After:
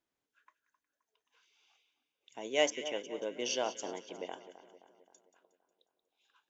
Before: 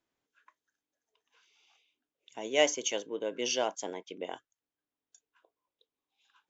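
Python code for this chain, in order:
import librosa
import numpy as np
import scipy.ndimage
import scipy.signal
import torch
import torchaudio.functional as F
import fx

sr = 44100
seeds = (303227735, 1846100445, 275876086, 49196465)

y = fx.savgol(x, sr, points=25, at=(2.7, 3.14))
y = fx.echo_split(y, sr, split_hz=1600.0, low_ms=262, high_ms=181, feedback_pct=52, wet_db=-13)
y = y * 10.0 ** (-3.5 / 20.0)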